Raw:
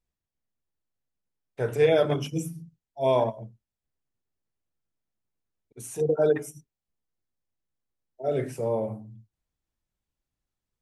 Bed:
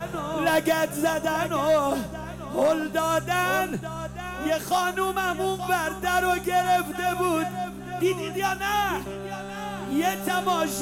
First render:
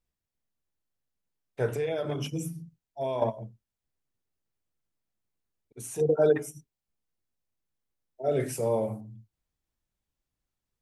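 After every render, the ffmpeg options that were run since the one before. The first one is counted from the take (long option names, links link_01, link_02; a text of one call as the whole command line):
ffmpeg -i in.wav -filter_complex "[0:a]asettb=1/sr,asplit=3[link_01][link_02][link_03];[link_01]atrim=end=1.724[link_04];[link_02]atrim=start=1.72:end=3.22,asetpts=PTS-STARTPTS,afade=type=in:duration=0.004:curve=qsin,afade=type=out:start_time=1.496:duration=0.004:curve=qsin,acompressor=threshold=-27dB:ratio=6:attack=3.2:release=140:knee=1:detection=peak[link_05];[link_03]atrim=start=3.216[link_06];[link_04][link_05]acrossfade=duration=0.004:curve1=hsin:curve2=qsin[link_07];[link_07][link_06]acrossfade=duration=0.004:curve1=qsin:curve2=hsin,asettb=1/sr,asplit=3[link_08][link_09][link_10];[link_08]atrim=end=8.404[link_11];[link_09]atrim=start=8.4:end=9.01,asetpts=PTS-STARTPTS,afade=type=in:duration=0.004:curve=qsin,afade=type=out:start_time=0.606:duration=0.004:curve=qsin,highshelf=frequency=3700:gain=11.5[link_12];[link_10]atrim=start=9.006[link_13];[link_11][link_12]acrossfade=duration=0.004:curve1=hsin:curve2=qsin[link_14];[link_14][link_13]acrossfade=duration=0.004:curve1=qsin:curve2=hsin" out.wav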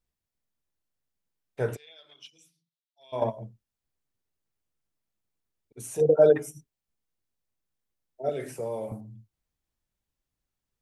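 ffmpeg -i in.wav -filter_complex "[0:a]asplit=3[link_01][link_02][link_03];[link_01]afade=type=out:start_time=1.75:duration=0.02[link_04];[link_02]bandpass=frequency=3800:width_type=q:width=4.1,afade=type=in:start_time=1.75:duration=0.02,afade=type=out:start_time=3.12:duration=0.02[link_05];[link_03]afade=type=in:start_time=3.12:duration=0.02[link_06];[link_04][link_05][link_06]amix=inputs=3:normalize=0,asettb=1/sr,asplit=3[link_07][link_08][link_09];[link_07]atrim=end=5.874[link_10];[link_08]atrim=start=5.87:end=6.35,asetpts=PTS-STARTPTS,afade=type=in:duration=0.004:curve=qsin,afade=type=out:start_time=0.476:duration=0.004:curve=qsin,equalizer=frequency=560:width=3.6:gain=9.5[link_11];[link_09]atrim=start=6.346[link_12];[link_10][link_11]acrossfade=duration=0.004:curve1=hsin:curve2=qsin[link_13];[link_13][link_12]acrossfade=duration=0.004:curve1=qsin:curve2=hsin,asettb=1/sr,asplit=3[link_14][link_15][link_16];[link_14]atrim=end=8.294[link_17];[link_15]atrim=start=8.29:end=8.92,asetpts=PTS-STARTPTS,afade=type=in:duration=0.004:curve=qsin,afade=type=out:start_time=0.626:duration=0.004:curve=qsin,acrossover=split=310|2100[link_18][link_19][link_20];[link_18]acompressor=threshold=-44dB:ratio=4[link_21];[link_19]acompressor=threshold=-31dB:ratio=4[link_22];[link_20]acompressor=threshold=-48dB:ratio=4[link_23];[link_21][link_22][link_23]amix=inputs=3:normalize=0[link_24];[link_16]atrim=start=8.916[link_25];[link_17][link_24]acrossfade=duration=0.004:curve1=hsin:curve2=qsin[link_26];[link_26][link_25]acrossfade=duration=0.004:curve1=qsin:curve2=hsin" out.wav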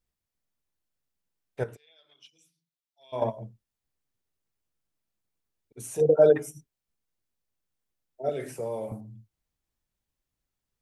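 ffmpeg -i in.wav -filter_complex "[0:a]asplit=2[link_01][link_02];[link_01]atrim=end=1.64,asetpts=PTS-STARTPTS,afade=type=out:start_time=1.636:duration=0.004:curve=hsin:silence=0.237137[link_03];[link_02]atrim=start=1.64,asetpts=PTS-STARTPTS,afade=type=in:duration=1.69:silence=0.237137[link_04];[link_03][link_04]concat=n=2:v=0:a=1" out.wav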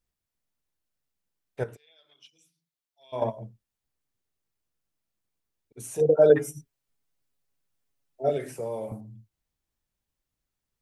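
ffmpeg -i in.wav -filter_complex "[0:a]asettb=1/sr,asplit=3[link_01][link_02][link_03];[link_01]atrim=end=6.294[link_04];[link_02]atrim=start=6.29:end=8.38,asetpts=PTS-STARTPTS,afade=type=in:duration=0.004:curve=qsin,afade=type=out:start_time=2.086:duration=0.004:curve=qsin,aecho=1:1:7.2:0.98,atrim=end_sample=92169[link_05];[link_03]atrim=start=8.376[link_06];[link_04][link_05]acrossfade=duration=0.004:curve1=hsin:curve2=qsin[link_07];[link_07][link_06]acrossfade=duration=0.004:curve1=qsin:curve2=hsin" out.wav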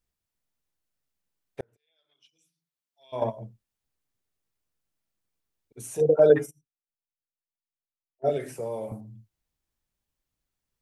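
ffmpeg -i in.wav -filter_complex "[0:a]asettb=1/sr,asplit=3[link_01][link_02][link_03];[link_01]atrim=end=6.194[link_04];[link_02]atrim=start=6.19:end=8.29,asetpts=PTS-STARTPTS,afade=type=in:duration=0.004:curve=qsin,afade=type=out:start_time=2.096:duration=0.004:curve=qsin,agate=range=-23dB:threshold=-36dB:ratio=16:release=100:detection=peak[link_05];[link_03]atrim=start=8.286[link_06];[link_04][link_05]acrossfade=duration=0.004:curve1=hsin:curve2=qsin[link_07];[link_07][link_06]acrossfade=duration=0.004:curve1=qsin:curve2=hsin,asplit=2[link_08][link_09];[link_08]atrim=end=1.61,asetpts=PTS-STARTPTS,afade=type=out:start_time=1.606:duration=0.004:curve=hsin[link_10];[link_09]atrim=start=1.61,asetpts=PTS-STARTPTS,afade=type=in:duration=1.59[link_11];[link_10][link_11]concat=n=2:v=0:a=1" out.wav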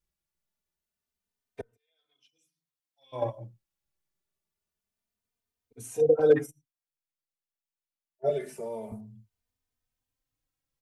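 ffmpeg -i in.wav -filter_complex "[0:a]asoftclip=type=hard:threshold=-8dB,asplit=2[link_01][link_02];[link_02]adelay=3.1,afreqshift=0.26[link_03];[link_01][link_03]amix=inputs=2:normalize=1" out.wav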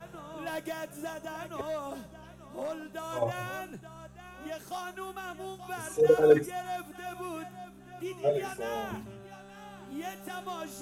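ffmpeg -i in.wav -i bed.wav -filter_complex "[1:a]volume=-14.5dB[link_01];[0:a][link_01]amix=inputs=2:normalize=0" out.wav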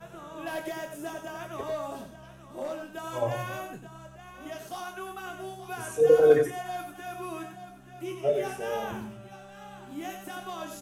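ffmpeg -i in.wav -filter_complex "[0:a]asplit=2[link_01][link_02];[link_02]adelay=24,volume=-7.5dB[link_03];[link_01][link_03]amix=inputs=2:normalize=0,asplit=2[link_04][link_05];[link_05]adelay=93.29,volume=-7dB,highshelf=frequency=4000:gain=-2.1[link_06];[link_04][link_06]amix=inputs=2:normalize=0" out.wav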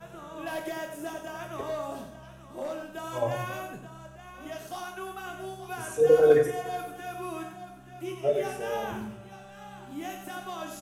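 ffmpeg -i in.wav -filter_complex "[0:a]asplit=2[link_01][link_02];[link_02]adelay=47,volume=-12.5dB[link_03];[link_01][link_03]amix=inputs=2:normalize=0,asplit=2[link_04][link_05];[link_05]adelay=185,lowpass=frequency=2000:poles=1,volume=-18.5dB,asplit=2[link_06][link_07];[link_07]adelay=185,lowpass=frequency=2000:poles=1,volume=0.47,asplit=2[link_08][link_09];[link_09]adelay=185,lowpass=frequency=2000:poles=1,volume=0.47,asplit=2[link_10][link_11];[link_11]adelay=185,lowpass=frequency=2000:poles=1,volume=0.47[link_12];[link_04][link_06][link_08][link_10][link_12]amix=inputs=5:normalize=0" out.wav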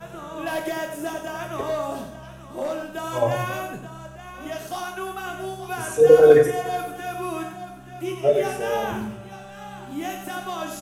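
ffmpeg -i in.wav -af "volume=7dB,alimiter=limit=-2dB:level=0:latency=1" out.wav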